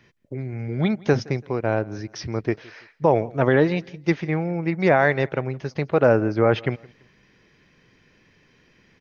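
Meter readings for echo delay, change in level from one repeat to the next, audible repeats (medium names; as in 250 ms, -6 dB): 167 ms, -9.5 dB, 2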